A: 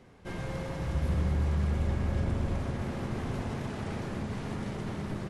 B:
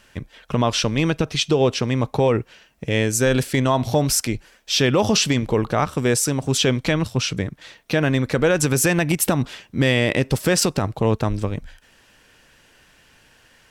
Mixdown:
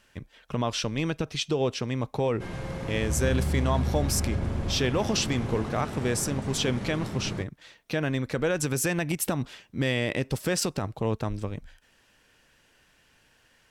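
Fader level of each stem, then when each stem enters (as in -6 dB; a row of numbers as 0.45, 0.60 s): +1.0, -8.5 dB; 2.15, 0.00 s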